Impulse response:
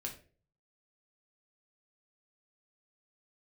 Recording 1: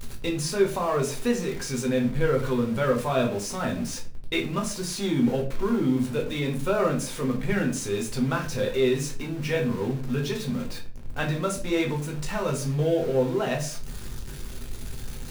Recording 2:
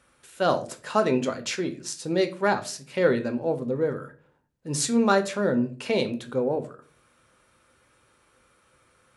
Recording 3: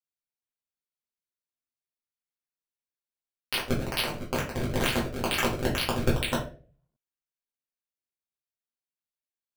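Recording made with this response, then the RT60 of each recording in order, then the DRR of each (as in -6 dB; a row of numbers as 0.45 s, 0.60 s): 1; 0.40 s, 0.40 s, 0.40 s; 0.0 dB, 7.0 dB, -6.0 dB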